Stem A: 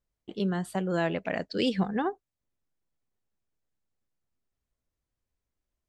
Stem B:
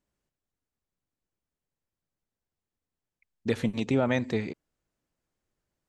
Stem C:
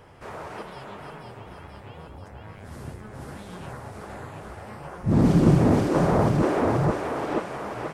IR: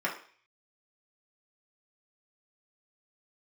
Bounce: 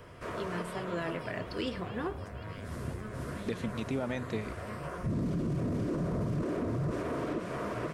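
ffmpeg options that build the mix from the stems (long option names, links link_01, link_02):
-filter_complex "[0:a]volume=-8dB,asplit=3[link_01][link_02][link_03];[link_02]volume=-13dB[link_04];[link_03]volume=-18dB[link_05];[1:a]volume=-4dB[link_06];[2:a]acrossover=split=340|2800[link_07][link_08][link_09];[link_07]acompressor=threshold=-23dB:ratio=4[link_10];[link_08]acompressor=threshold=-35dB:ratio=4[link_11];[link_09]acompressor=threshold=-55dB:ratio=4[link_12];[link_10][link_11][link_12]amix=inputs=3:normalize=0,volume=0.5dB[link_13];[link_01][link_13]amix=inputs=2:normalize=0,asuperstop=centerf=820:order=4:qfactor=4.7,alimiter=level_in=1.5dB:limit=-24dB:level=0:latency=1:release=40,volume=-1.5dB,volume=0dB[link_14];[3:a]atrim=start_sample=2205[link_15];[link_04][link_15]afir=irnorm=-1:irlink=0[link_16];[link_05]aecho=0:1:911:1[link_17];[link_06][link_14][link_16][link_17]amix=inputs=4:normalize=0,alimiter=limit=-22.5dB:level=0:latency=1:release=260"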